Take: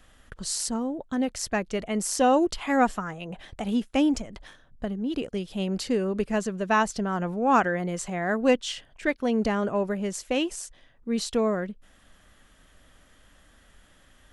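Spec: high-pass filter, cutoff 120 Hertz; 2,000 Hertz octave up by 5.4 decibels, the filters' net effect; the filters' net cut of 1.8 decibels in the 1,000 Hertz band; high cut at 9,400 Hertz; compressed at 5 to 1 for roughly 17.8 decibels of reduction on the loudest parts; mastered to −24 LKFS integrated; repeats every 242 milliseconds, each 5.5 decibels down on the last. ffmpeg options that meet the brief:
ffmpeg -i in.wav -af "highpass=120,lowpass=9400,equalizer=frequency=1000:width_type=o:gain=-4.5,equalizer=frequency=2000:width_type=o:gain=8.5,acompressor=threshold=-37dB:ratio=5,aecho=1:1:242|484|726|968|1210|1452|1694:0.531|0.281|0.149|0.079|0.0419|0.0222|0.0118,volume=14dB" out.wav

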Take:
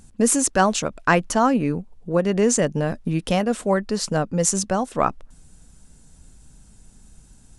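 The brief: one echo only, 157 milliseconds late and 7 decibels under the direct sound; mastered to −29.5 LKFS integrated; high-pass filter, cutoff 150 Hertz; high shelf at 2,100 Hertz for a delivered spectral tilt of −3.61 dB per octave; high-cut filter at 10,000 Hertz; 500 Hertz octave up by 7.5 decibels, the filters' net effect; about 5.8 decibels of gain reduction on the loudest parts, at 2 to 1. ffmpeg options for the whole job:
ffmpeg -i in.wav -af "highpass=150,lowpass=10000,equalizer=frequency=500:width_type=o:gain=8.5,highshelf=frequency=2100:gain=6,acompressor=threshold=-18dB:ratio=2,aecho=1:1:157:0.447,volume=-9.5dB" out.wav

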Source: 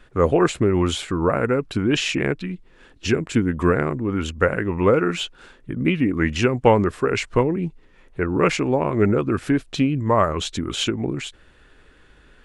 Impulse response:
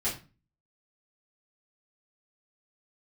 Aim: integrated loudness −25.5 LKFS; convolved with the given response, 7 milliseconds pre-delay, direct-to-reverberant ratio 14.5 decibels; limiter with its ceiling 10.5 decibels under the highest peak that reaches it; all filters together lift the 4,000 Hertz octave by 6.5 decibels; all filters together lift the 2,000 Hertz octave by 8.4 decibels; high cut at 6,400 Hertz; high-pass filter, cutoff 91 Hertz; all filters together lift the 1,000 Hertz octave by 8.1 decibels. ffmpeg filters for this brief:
-filter_complex "[0:a]highpass=91,lowpass=6400,equalizer=frequency=1000:width_type=o:gain=7.5,equalizer=frequency=2000:width_type=o:gain=7,equalizer=frequency=4000:width_type=o:gain=5.5,alimiter=limit=-7dB:level=0:latency=1,asplit=2[link_01][link_02];[1:a]atrim=start_sample=2205,adelay=7[link_03];[link_02][link_03]afir=irnorm=-1:irlink=0,volume=-21dB[link_04];[link_01][link_04]amix=inputs=2:normalize=0,volume=-5.5dB"

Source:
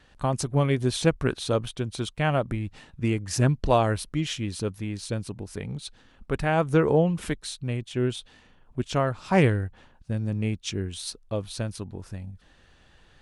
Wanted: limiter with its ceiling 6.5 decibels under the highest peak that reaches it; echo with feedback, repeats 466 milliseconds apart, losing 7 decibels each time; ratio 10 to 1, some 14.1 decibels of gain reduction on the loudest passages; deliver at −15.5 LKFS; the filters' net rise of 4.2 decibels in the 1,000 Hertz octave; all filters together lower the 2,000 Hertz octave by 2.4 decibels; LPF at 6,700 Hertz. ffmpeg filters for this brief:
ffmpeg -i in.wav -af "lowpass=6700,equalizer=frequency=1000:width_type=o:gain=7,equalizer=frequency=2000:width_type=o:gain=-6,acompressor=threshold=-28dB:ratio=10,alimiter=limit=-23.5dB:level=0:latency=1,aecho=1:1:466|932|1398|1864|2330:0.447|0.201|0.0905|0.0407|0.0183,volume=20dB" out.wav

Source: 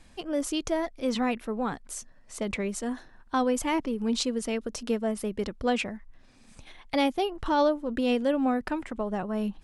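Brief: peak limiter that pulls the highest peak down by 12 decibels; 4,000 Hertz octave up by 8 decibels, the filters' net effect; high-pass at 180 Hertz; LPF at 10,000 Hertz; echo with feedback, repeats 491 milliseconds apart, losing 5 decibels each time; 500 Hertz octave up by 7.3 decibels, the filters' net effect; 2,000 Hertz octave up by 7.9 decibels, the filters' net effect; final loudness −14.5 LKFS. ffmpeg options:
ffmpeg -i in.wav -af "highpass=180,lowpass=10000,equalizer=frequency=500:width_type=o:gain=8,equalizer=frequency=2000:width_type=o:gain=7.5,equalizer=frequency=4000:width_type=o:gain=7.5,alimiter=limit=-19dB:level=0:latency=1,aecho=1:1:491|982|1473|1964|2455|2946|3437:0.562|0.315|0.176|0.0988|0.0553|0.031|0.0173,volume=13dB" out.wav

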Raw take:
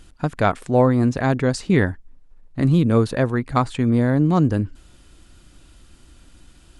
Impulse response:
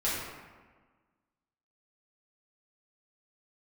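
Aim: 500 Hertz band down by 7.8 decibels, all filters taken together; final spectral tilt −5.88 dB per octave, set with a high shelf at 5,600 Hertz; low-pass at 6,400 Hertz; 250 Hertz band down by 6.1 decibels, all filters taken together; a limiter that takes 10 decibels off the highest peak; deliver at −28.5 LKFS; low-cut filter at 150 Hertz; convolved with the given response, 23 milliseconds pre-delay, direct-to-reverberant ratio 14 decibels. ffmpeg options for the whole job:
-filter_complex "[0:a]highpass=150,lowpass=6400,equalizer=frequency=250:width_type=o:gain=-4.5,equalizer=frequency=500:width_type=o:gain=-8.5,highshelf=frequency=5600:gain=8,alimiter=limit=-14dB:level=0:latency=1,asplit=2[link_01][link_02];[1:a]atrim=start_sample=2205,adelay=23[link_03];[link_02][link_03]afir=irnorm=-1:irlink=0,volume=-23dB[link_04];[link_01][link_04]amix=inputs=2:normalize=0,volume=-2.5dB"

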